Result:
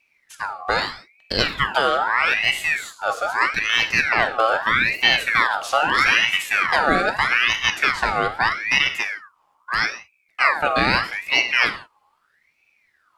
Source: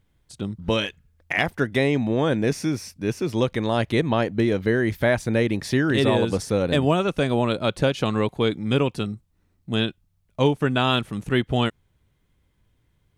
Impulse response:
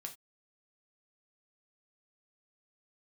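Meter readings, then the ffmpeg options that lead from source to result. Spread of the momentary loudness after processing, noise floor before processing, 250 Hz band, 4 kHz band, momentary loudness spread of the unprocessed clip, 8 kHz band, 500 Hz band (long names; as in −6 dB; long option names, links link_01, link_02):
9 LU, −67 dBFS, −11.0 dB, +7.5 dB, 7 LU, +5.5 dB, −5.0 dB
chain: -filter_complex "[0:a]afreqshift=36,asplit=2[link_01][link_02];[1:a]atrim=start_sample=2205,asetrate=24255,aresample=44100[link_03];[link_02][link_03]afir=irnorm=-1:irlink=0,volume=4dB[link_04];[link_01][link_04]amix=inputs=2:normalize=0,aeval=exprs='val(0)*sin(2*PI*1700*n/s+1700*0.45/0.79*sin(2*PI*0.79*n/s))':channel_layout=same,volume=-3dB"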